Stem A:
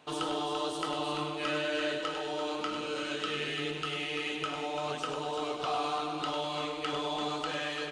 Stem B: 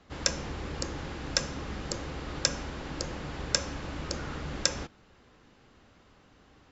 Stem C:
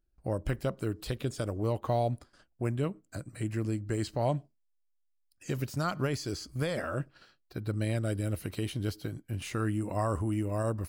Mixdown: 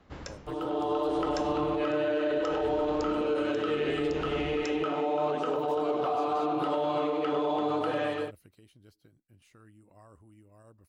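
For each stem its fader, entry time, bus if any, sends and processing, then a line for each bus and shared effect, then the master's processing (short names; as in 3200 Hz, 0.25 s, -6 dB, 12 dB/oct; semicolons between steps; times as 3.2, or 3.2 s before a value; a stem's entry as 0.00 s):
+2.0 dB, 0.40 s, no send, AGC gain up to 10 dB; band-pass 430 Hz, Q 0.85
0.0 dB, 0.00 s, no send, high shelf 3000 Hz -9.5 dB; dB-linear tremolo 0.69 Hz, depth 20 dB
8.19 s -13.5 dB -> 8.56 s -22.5 dB, 0.00 s, no send, harmonic-percussive split harmonic -4 dB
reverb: off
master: limiter -21 dBFS, peak gain reduction 8 dB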